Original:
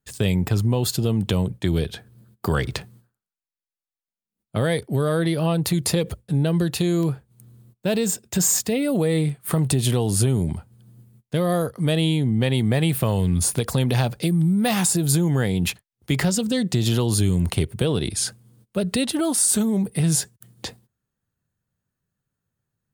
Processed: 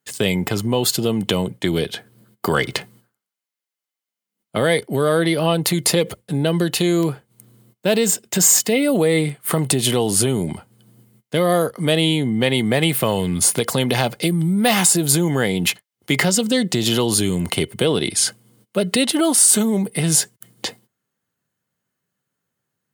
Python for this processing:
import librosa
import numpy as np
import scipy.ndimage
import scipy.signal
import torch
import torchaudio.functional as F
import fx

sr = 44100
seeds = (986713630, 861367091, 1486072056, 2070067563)

y = scipy.signal.sosfilt(scipy.signal.bessel(2, 260.0, 'highpass', norm='mag', fs=sr, output='sos'), x)
y = fx.small_body(y, sr, hz=(2100.0, 3000.0), ring_ms=90, db=12)
y = np.clip(y, -10.0 ** (-11.5 / 20.0), 10.0 ** (-11.5 / 20.0))
y = y * librosa.db_to_amplitude(6.5)